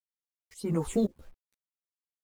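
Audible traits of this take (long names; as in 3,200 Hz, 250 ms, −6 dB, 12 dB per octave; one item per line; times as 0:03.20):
phaser sweep stages 6, 1.7 Hz, lowest notch 740–4,100 Hz
a quantiser's noise floor 10 bits, dither none
tremolo saw up 1.9 Hz, depth 95%
a shimmering, thickened sound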